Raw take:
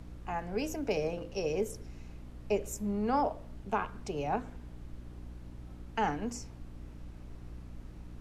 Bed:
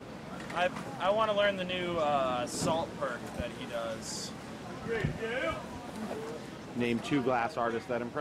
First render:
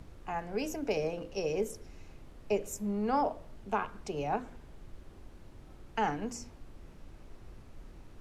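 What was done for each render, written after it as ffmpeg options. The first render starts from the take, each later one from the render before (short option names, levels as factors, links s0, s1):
-af "bandreject=f=60:t=h:w=6,bandreject=f=120:t=h:w=6,bandreject=f=180:t=h:w=6,bandreject=f=240:t=h:w=6,bandreject=f=300:t=h:w=6"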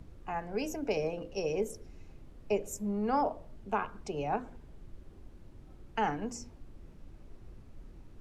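-af "afftdn=nr=6:nf=-53"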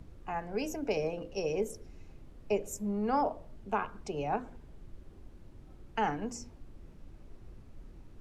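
-af anull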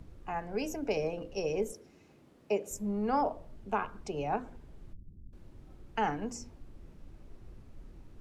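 -filter_complex "[0:a]asettb=1/sr,asplit=3[s0][s1][s2];[s0]atrim=end=1.724[s3];[s1]atrim=start=1.72:end=2.71,asetpts=PTS-STARTPTS,afade=t=in:d=0.004:c=qsin,afade=t=out:st=0.986:d=0.004:c=qsin,highpass=180[s4];[s2]atrim=start=2.706[s5];[s3][s4]acrossfade=d=0.004:c1=hsin:c2=qsin[s6];[s6][s5]acrossfade=d=0.004:c1=qsin:c2=hsin,asettb=1/sr,asplit=3[s7][s8][s9];[s7]atrim=end=4.934[s10];[s8]atrim=start=4.93:end=5.33,asetpts=PTS-STARTPTS,afade=t=in:d=0.004:c=qsin,afade=t=out:st=0.396:d=0.004:c=qsin,lowpass=f=170:t=q:w=1.5[s11];[s9]atrim=start=5.326[s12];[s10][s11]acrossfade=d=0.004:c1=hsin:c2=qsin[s13];[s13][s12]acrossfade=d=0.004:c1=qsin:c2=hsin"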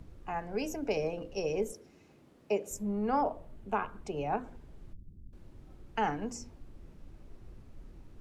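-filter_complex "[0:a]asettb=1/sr,asplit=3[s0][s1][s2];[s0]atrim=end=2.834[s3];[s1]atrim=start=2.83:end=4.44,asetpts=PTS-STARTPTS,afade=t=in:d=0.004:c=qsin,afade=t=out:st=1.606:d=0.004:c=qsin,equalizer=f=5200:w=1.5:g=-5[s4];[s2]atrim=start=4.436[s5];[s3][s4]acrossfade=d=0.004:c1=hsin:c2=qsin[s6];[s6][s5]acrossfade=d=0.004:c1=qsin:c2=hsin"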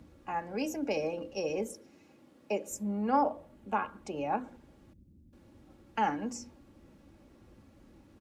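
-af "highpass=100,aecho=1:1:3.6:0.47"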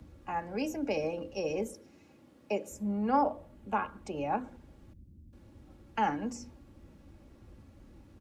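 -filter_complex "[0:a]acrossover=split=120|480|3900[s0][s1][s2][s3];[s0]acontrast=86[s4];[s3]alimiter=level_in=5.96:limit=0.0631:level=0:latency=1:release=92,volume=0.168[s5];[s4][s1][s2][s5]amix=inputs=4:normalize=0"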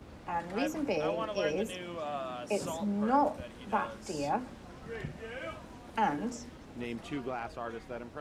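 -filter_complex "[1:a]volume=0.398[s0];[0:a][s0]amix=inputs=2:normalize=0"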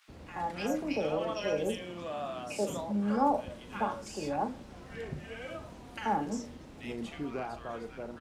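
-filter_complex "[0:a]asplit=2[s0][s1];[s1]adelay=39,volume=0.282[s2];[s0][s2]amix=inputs=2:normalize=0,acrossover=split=1400[s3][s4];[s3]adelay=80[s5];[s5][s4]amix=inputs=2:normalize=0"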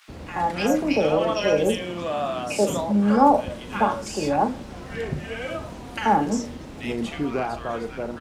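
-af "volume=3.55"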